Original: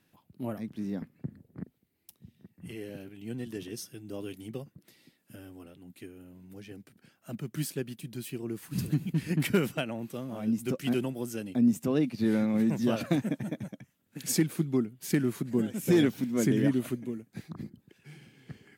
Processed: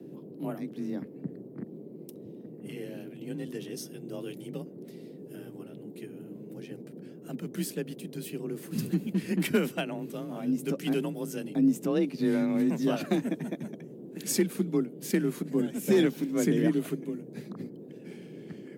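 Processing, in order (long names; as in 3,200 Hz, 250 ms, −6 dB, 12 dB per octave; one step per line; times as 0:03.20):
noise in a band 110–410 Hz −45 dBFS
frequency shifter +30 Hz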